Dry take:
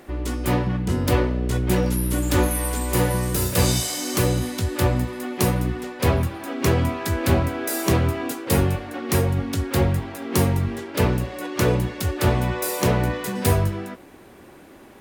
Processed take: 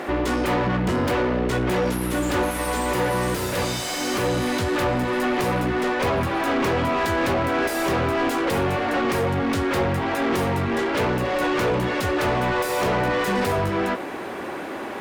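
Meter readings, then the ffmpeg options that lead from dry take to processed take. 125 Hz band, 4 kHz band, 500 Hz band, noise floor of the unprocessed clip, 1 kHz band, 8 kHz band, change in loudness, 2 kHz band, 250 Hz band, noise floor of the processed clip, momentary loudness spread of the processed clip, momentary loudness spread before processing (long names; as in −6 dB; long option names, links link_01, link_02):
−6.5 dB, +0.5 dB, +2.5 dB, −46 dBFS, +5.5 dB, −5.5 dB, −0.5 dB, +5.5 dB, +0.5 dB, −31 dBFS, 3 LU, 6 LU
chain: -filter_complex "[0:a]acompressor=threshold=-24dB:ratio=6,asplit=2[link_01][link_02];[link_02]highpass=frequency=720:poles=1,volume=28dB,asoftclip=type=tanh:threshold=-13dB[link_03];[link_01][link_03]amix=inputs=2:normalize=0,lowpass=frequency=1600:poles=1,volume=-6dB"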